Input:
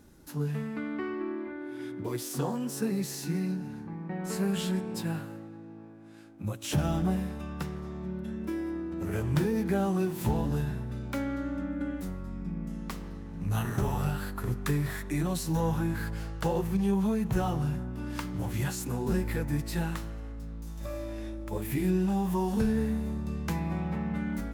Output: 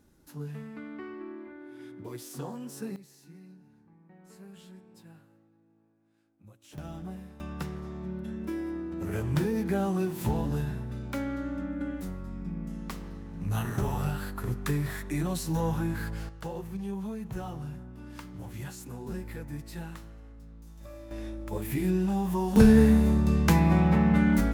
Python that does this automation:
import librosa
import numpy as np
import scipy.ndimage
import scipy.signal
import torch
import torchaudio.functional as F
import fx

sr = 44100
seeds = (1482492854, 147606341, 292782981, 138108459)

y = fx.gain(x, sr, db=fx.steps((0.0, -7.0), (2.96, -20.0), (6.78, -12.0), (7.4, -0.5), (16.29, -8.5), (21.11, 0.0), (22.56, 10.0)))